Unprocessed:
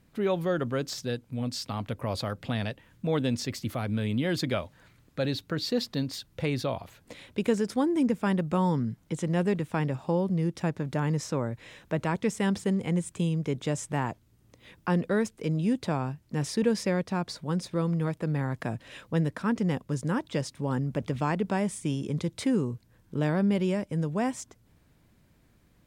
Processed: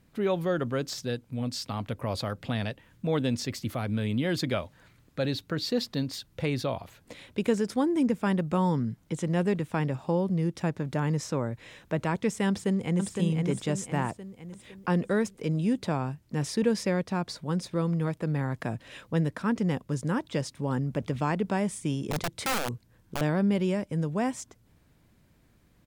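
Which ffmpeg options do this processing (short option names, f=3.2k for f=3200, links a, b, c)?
-filter_complex "[0:a]asplit=2[a][b];[b]afade=t=in:st=12.48:d=0.01,afade=t=out:st=13.12:d=0.01,aecho=0:1:510|1020|1530|2040|2550|3060:0.630957|0.315479|0.157739|0.0788697|0.0394348|0.0197174[c];[a][c]amix=inputs=2:normalize=0,asettb=1/sr,asplit=3[d][e][f];[d]atrim=end=22.114[g];[e]atrim=start=22.11:end=23.21,asetpts=PTS-STARTPTS,afade=t=in:d=0.004:c=qsin,afade=t=out:st=1.096:d=0.004:c=qsin,aeval=exprs='(mod(15*val(0)+1,2)-1)/15':c=same[h];[f]atrim=start=23.206[i];[g][h]acrossfade=d=0.004:c1=hsin:c2=qsin[j];[j][i]acrossfade=d=0.004:c1=qsin:c2=hsin"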